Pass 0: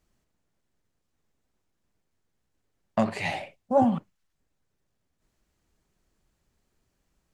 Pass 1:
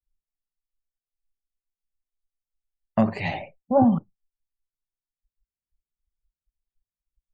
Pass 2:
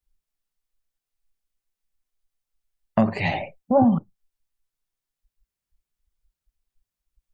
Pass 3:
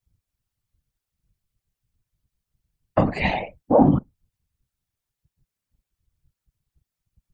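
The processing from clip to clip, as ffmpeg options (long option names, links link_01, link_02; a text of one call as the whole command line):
ffmpeg -i in.wav -af "lowshelf=frequency=310:gain=8,afftdn=noise_reduction=35:noise_floor=-43" out.wav
ffmpeg -i in.wav -af "acompressor=threshold=-32dB:ratio=1.5,volume=7dB" out.wav
ffmpeg -i in.wav -af "afftfilt=real='hypot(re,im)*cos(2*PI*random(0))':imag='hypot(re,im)*sin(2*PI*random(1))':win_size=512:overlap=0.75,volume=7.5dB" out.wav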